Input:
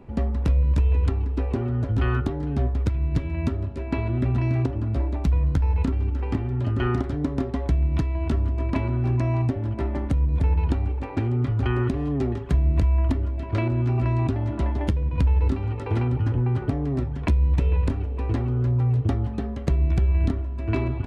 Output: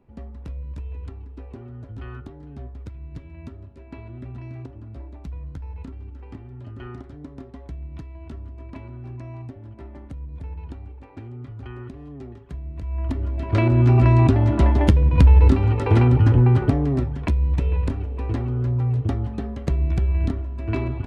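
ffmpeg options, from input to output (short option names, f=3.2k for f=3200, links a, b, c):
-af "volume=8dB,afade=t=in:st=12.8:d=0.36:silence=0.266073,afade=t=in:st=13.16:d=0.73:silence=0.316228,afade=t=out:st=16.43:d=0.83:silence=0.375837"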